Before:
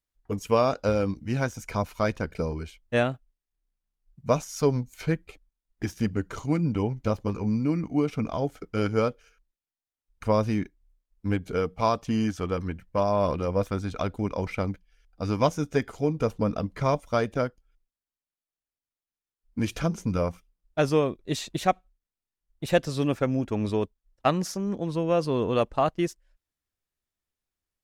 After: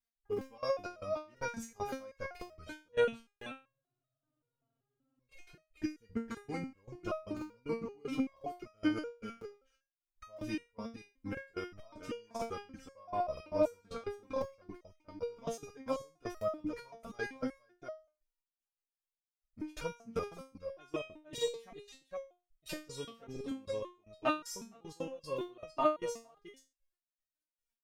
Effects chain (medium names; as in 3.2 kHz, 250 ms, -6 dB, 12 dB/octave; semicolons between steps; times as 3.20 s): delay 463 ms -11 dB; trance gate "x..xx...x." 192 bpm -24 dB; spectral freeze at 3.59 s, 1.59 s; crackling interface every 1.00 s, samples 2048, repeat, from 0.32 s; resonator arpeggio 5.2 Hz 230–630 Hz; trim +9.5 dB